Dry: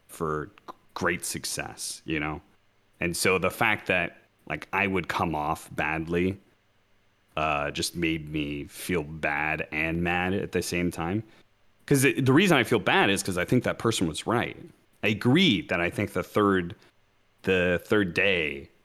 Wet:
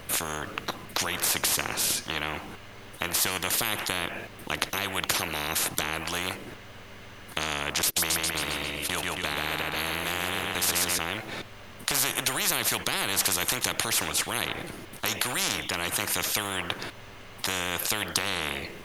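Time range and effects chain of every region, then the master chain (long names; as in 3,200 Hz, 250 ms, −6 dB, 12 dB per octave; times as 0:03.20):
0:07.82–0:10.99: noise gate −35 dBFS, range −30 dB + repeating echo 135 ms, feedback 49%, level −4.5 dB
whole clip: dynamic equaliser 4,800 Hz, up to −4 dB, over −41 dBFS, Q 0.89; every bin compressed towards the loudest bin 10 to 1; level +6.5 dB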